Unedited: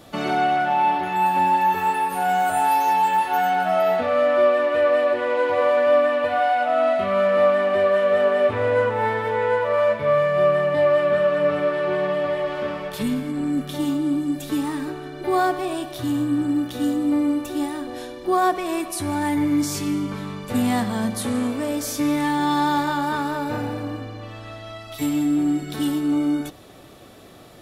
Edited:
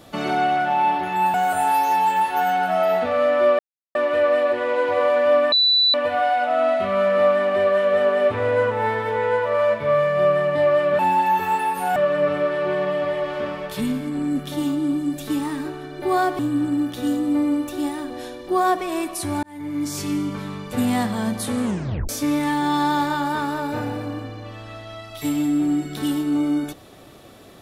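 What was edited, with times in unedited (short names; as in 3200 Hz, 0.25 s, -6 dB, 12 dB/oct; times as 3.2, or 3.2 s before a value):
1.34–2.31 move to 11.18
4.56 insert silence 0.36 s
6.13 add tone 3970 Hz -13.5 dBFS 0.42 s
15.61–16.16 cut
19.2–19.86 fade in
21.41 tape stop 0.45 s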